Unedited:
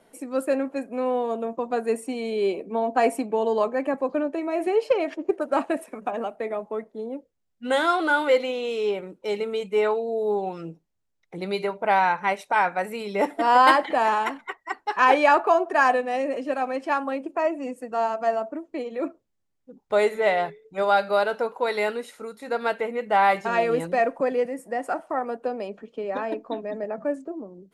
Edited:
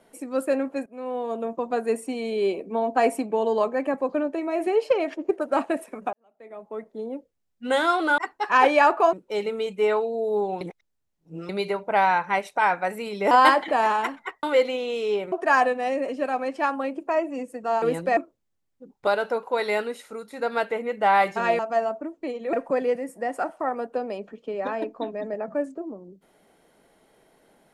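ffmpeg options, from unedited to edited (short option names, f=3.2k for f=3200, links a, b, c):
-filter_complex "[0:a]asplit=15[a][b][c][d][e][f][g][h][i][j][k][l][m][n][o];[a]atrim=end=0.86,asetpts=PTS-STARTPTS,afade=t=out:st=0.856:d=0.004:c=hsin:silence=0.158489[p];[b]atrim=start=0.86:end=6.13,asetpts=PTS-STARTPTS,afade=t=in:d=0.6:silence=0.158489,afade=t=out:st=5.266:d=0.004:c=hsin[q];[c]atrim=start=6.13:end=8.182,asetpts=PTS-STARTPTS,afade=t=in:d=0.79:c=qua[r];[d]atrim=start=14.648:end=15.602[s];[e]atrim=start=9.068:end=10.552[t];[f]atrim=start=10.548:end=11.432,asetpts=PTS-STARTPTS,areverse[u];[g]atrim=start=11.428:end=13.252[v];[h]atrim=start=13.528:end=14.652[w];[i]atrim=start=8.178:end=9.072[x];[j]atrim=start=15.598:end=18.102[y];[k]atrim=start=23.678:end=24.032[z];[l]atrim=start=19.038:end=19.942[aa];[m]atrim=start=21.158:end=23.682[ab];[n]atrim=start=18.098:end=19.042[ac];[o]atrim=start=24.028[ad];[p][q][r]concat=n=3:v=0:a=1[ae];[ae][s]acrossfade=d=0.004:c1=hsin:c2=hsin[af];[af][t]acrossfade=d=0.004:c1=hsin:c2=hsin[ag];[ag][u]acrossfade=d=0.004:c1=hsin:c2=hsin[ah];[ah][v]acrossfade=d=0.004:c1=hsin:c2=hsin[ai];[ai][w]acrossfade=d=0.004:c1=hsin:c2=hsin[aj];[aj][x]acrossfade=d=0.004:c1=hsin:c2=hsin[ak];[ak][y]acrossfade=d=0.004:c1=hsin:c2=hsin[al];[al][z]acrossfade=d=0.004:c1=hsin:c2=hsin[am];[am][aa]acrossfade=d=0.004:c1=hsin:c2=hsin[an];[an][ab]acrossfade=d=0.004:c1=hsin:c2=hsin[ao];[ao][ac]acrossfade=d=0.004:c1=hsin:c2=hsin[ap];[ap][ad]acrossfade=d=0.004:c1=hsin:c2=hsin"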